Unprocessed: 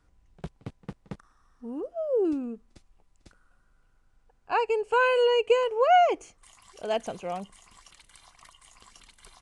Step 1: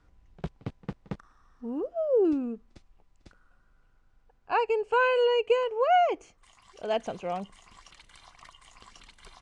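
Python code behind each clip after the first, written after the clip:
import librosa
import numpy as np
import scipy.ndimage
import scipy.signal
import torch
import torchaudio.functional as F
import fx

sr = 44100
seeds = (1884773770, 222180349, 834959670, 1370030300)

y = scipy.signal.sosfilt(scipy.signal.bessel(2, 5000.0, 'lowpass', norm='mag', fs=sr, output='sos'), x)
y = fx.rider(y, sr, range_db=3, speed_s=2.0)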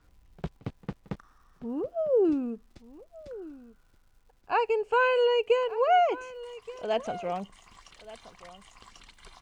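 y = fx.dmg_crackle(x, sr, seeds[0], per_s=350.0, level_db=-60.0)
y = y + 10.0 ** (-18.0 / 20.0) * np.pad(y, (int(1176 * sr / 1000.0), 0))[:len(y)]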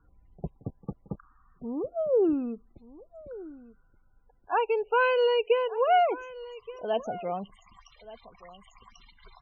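y = fx.spec_topn(x, sr, count=32)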